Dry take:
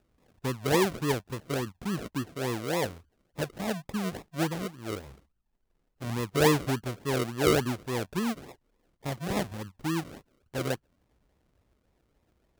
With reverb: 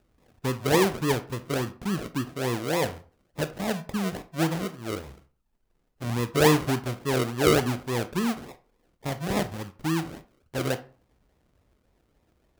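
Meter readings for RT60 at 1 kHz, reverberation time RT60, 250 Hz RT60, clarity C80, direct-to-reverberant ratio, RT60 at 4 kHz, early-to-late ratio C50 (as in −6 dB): 0.40 s, 0.40 s, 0.40 s, 20.5 dB, 11.0 dB, 0.25 s, 15.5 dB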